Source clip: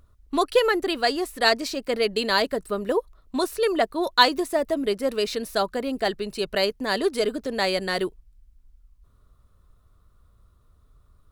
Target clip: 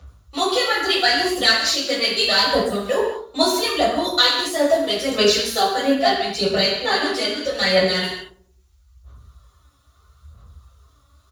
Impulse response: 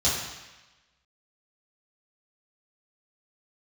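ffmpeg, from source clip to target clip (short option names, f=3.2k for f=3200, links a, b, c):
-filter_complex "[0:a]tiltshelf=f=720:g=-6.5,acrossover=split=190[a][b];[b]acompressor=threshold=-24dB:ratio=2[c];[a][c]amix=inputs=2:normalize=0,aphaser=in_gain=1:out_gain=1:delay=3.6:decay=0.71:speed=0.77:type=sinusoidal,asplit=2[d][e];[e]adelay=91,lowpass=f=880:p=1,volume=-14.5dB,asplit=2[f][g];[g]adelay=91,lowpass=f=880:p=1,volume=0.53,asplit=2[h][i];[i]adelay=91,lowpass=f=880:p=1,volume=0.53,asplit=2[j][k];[k]adelay=91,lowpass=f=880:p=1,volume=0.53,asplit=2[l][m];[m]adelay=91,lowpass=f=880:p=1,volume=0.53[n];[d][f][h][j][l][n]amix=inputs=6:normalize=0[o];[1:a]atrim=start_sample=2205,afade=t=out:st=0.31:d=0.01,atrim=end_sample=14112[p];[o][p]afir=irnorm=-1:irlink=0,asplit=3[q][r][s];[q]afade=t=out:st=5.93:d=0.02[t];[r]adynamicequalizer=threshold=0.0447:dfrequency=5300:dqfactor=0.7:tfrequency=5300:tqfactor=0.7:attack=5:release=100:ratio=0.375:range=3.5:mode=cutabove:tftype=highshelf,afade=t=in:st=5.93:d=0.02,afade=t=out:st=8.03:d=0.02[u];[s]afade=t=in:st=8.03:d=0.02[v];[t][u][v]amix=inputs=3:normalize=0,volume=-8.5dB"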